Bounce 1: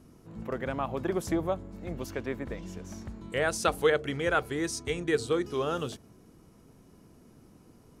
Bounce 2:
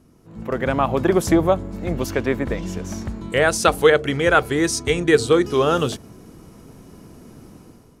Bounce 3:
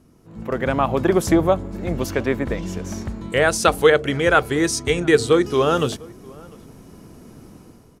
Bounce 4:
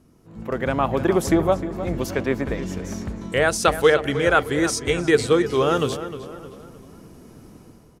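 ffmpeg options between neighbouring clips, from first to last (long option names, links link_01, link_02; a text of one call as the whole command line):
ffmpeg -i in.wav -af "dynaudnorm=framelen=140:gausssize=7:maxgain=12dB,volume=1dB" out.wav
ffmpeg -i in.wav -filter_complex "[0:a]asplit=2[link_01][link_02];[link_02]adelay=699.7,volume=-24dB,highshelf=frequency=4000:gain=-15.7[link_03];[link_01][link_03]amix=inputs=2:normalize=0" out.wav
ffmpeg -i in.wav -filter_complex "[0:a]asplit=2[link_01][link_02];[link_02]adelay=308,lowpass=frequency=3400:poles=1,volume=-12dB,asplit=2[link_03][link_04];[link_04]adelay=308,lowpass=frequency=3400:poles=1,volume=0.44,asplit=2[link_05][link_06];[link_06]adelay=308,lowpass=frequency=3400:poles=1,volume=0.44,asplit=2[link_07][link_08];[link_08]adelay=308,lowpass=frequency=3400:poles=1,volume=0.44[link_09];[link_01][link_03][link_05][link_07][link_09]amix=inputs=5:normalize=0,volume=-2dB" out.wav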